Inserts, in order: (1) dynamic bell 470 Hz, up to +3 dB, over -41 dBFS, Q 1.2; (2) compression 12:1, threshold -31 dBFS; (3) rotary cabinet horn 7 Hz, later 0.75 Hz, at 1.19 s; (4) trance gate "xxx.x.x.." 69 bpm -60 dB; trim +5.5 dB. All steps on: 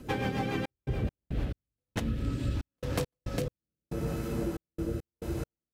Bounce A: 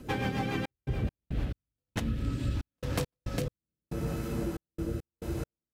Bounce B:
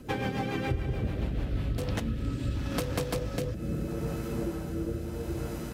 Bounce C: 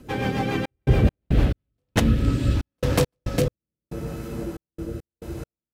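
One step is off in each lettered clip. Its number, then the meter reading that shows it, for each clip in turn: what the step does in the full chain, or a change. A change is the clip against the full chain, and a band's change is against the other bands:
1, 500 Hz band -2.0 dB; 4, crest factor change -2.5 dB; 2, mean gain reduction 6.5 dB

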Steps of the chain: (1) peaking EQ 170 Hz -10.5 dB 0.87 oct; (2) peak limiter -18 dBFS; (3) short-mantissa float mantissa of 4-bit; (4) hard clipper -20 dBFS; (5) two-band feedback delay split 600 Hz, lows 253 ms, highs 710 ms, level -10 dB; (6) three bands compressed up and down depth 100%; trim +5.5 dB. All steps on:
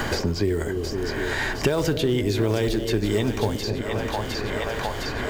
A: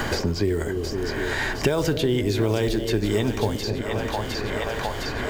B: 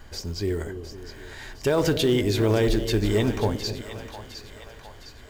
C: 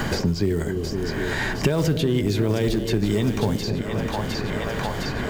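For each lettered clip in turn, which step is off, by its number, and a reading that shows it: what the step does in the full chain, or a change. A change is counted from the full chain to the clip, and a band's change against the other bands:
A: 4, distortion -26 dB; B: 6, crest factor change -3.5 dB; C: 1, 125 Hz band +3.5 dB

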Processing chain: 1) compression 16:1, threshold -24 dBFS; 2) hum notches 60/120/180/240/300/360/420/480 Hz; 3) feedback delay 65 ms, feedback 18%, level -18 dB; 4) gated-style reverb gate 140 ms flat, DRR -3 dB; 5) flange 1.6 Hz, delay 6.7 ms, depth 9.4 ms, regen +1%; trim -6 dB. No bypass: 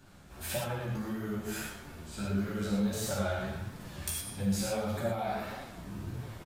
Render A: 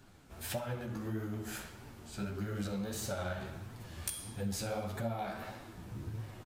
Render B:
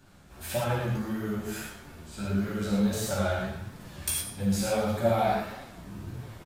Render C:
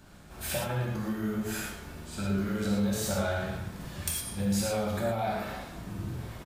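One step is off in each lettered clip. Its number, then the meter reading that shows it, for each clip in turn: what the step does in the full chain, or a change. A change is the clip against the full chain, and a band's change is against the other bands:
4, momentary loudness spread change -2 LU; 1, mean gain reduction 2.5 dB; 5, loudness change +3.0 LU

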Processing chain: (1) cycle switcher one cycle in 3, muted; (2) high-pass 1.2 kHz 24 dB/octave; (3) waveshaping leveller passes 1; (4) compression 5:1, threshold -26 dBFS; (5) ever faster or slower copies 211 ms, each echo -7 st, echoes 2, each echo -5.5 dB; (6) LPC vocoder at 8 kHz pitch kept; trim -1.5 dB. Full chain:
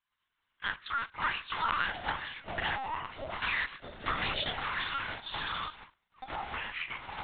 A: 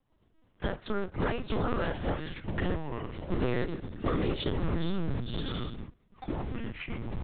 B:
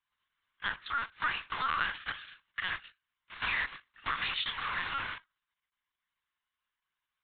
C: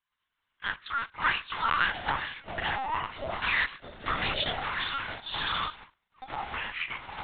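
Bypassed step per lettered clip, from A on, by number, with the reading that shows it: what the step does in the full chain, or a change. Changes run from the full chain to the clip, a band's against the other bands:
2, 250 Hz band +21.5 dB; 5, 500 Hz band -8.0 dB; 4, mean gain reduction 2.5 dB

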